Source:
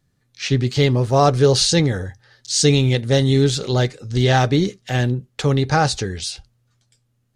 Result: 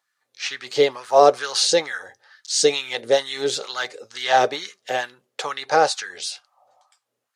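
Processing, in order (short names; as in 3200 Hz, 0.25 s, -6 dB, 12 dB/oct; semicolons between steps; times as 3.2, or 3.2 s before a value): spectral repair 6.37–6.95, 520–1300 Hz before; LFO high-pass sine 2.2 Hz 440–1500 Hz; gain -2 dB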